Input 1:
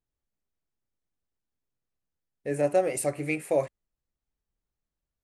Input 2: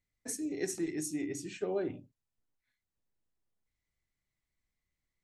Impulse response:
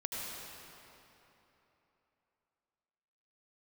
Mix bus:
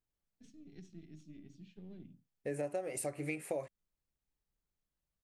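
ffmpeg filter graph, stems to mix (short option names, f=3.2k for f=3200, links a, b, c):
-filter_complex "[0:a]acompressor=threshold=-32dB:ratio=6,volume=-3dB[a];[1:a]aeval=exprs='if(lt(val(0),0),0.447*val(0),val(0))':c=same,firequalizer=gain_entry='entry(110,0);entry(180,13);entry(310,-5);entry(450,-12);entry(940,-19);entry(3300,1);entry(9900,-29)':delay=0.05:min_phase=1,adelay=150,volume=-13.5dB[b];[a][b]amix=inputs=2:normalize=0"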